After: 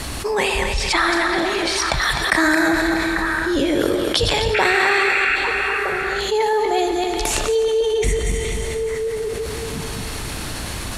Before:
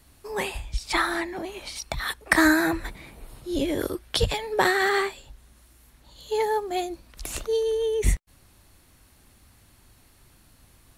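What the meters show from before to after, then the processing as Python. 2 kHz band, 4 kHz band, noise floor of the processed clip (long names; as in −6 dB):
+9.0 dB, +10.5 dB, −28 dBFS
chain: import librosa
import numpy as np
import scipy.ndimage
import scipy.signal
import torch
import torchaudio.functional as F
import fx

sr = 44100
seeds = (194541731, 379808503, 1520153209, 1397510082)

y = fx.reverse_delay_fb(x, sr, ms=128, feedback_pct=45, wet_db=-6)
y = fx.spec_paint(y, sr, seeds[0], shape='noise', start_s=4.54, length_s=0.82, low_hz=1300.0, high_hz=2800.0, level_db=-26.0)
y = scipy.signal.sosfilt(scipy.signal.butter(2, 8900.0, 'lowpass', fs=sr, output='sos'), y)
y = fx.low_shelf(y, sr, hz=200.0, db=-5.0)
y = fx.echo_stepped(y, sr, ms=422, hz=3400.0, octaves=-1.4, feedback_pct=70, wet_db=-11)
y = fx.rev_schroeder(y, sr, rt60_s=2.8, comb_ms=27, drr_db=12.0)
y = fx.env_flatten(y, sr, amount_pct=70)
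y = F.gain(torch.from_numpy(y), 1.5).numpy()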